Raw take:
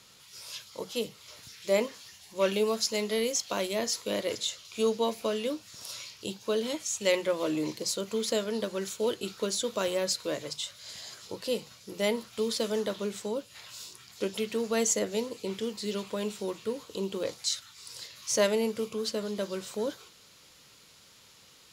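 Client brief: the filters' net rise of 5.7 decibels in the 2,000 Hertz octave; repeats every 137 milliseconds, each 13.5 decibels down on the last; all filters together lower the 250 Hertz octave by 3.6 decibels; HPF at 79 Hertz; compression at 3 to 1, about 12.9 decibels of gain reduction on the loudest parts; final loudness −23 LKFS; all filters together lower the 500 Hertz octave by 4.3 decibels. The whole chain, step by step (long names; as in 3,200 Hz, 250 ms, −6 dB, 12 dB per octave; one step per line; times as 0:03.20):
high-pass filter 79 Hz
parametric band 250 Hz −3.5 dB
parametric band 500 Hz −4.5 dB
parametric band 2,000 Hz +7 dB
downward compressor 3 to 1, threshold −40 dBFS
repeating echo 137 ms, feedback 21%, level −13.5 dB
level +18 dB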